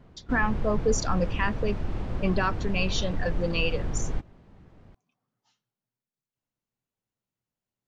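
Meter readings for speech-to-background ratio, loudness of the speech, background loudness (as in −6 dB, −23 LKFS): 5.5 dB, −29.0 LKFS, −34.5 LKFS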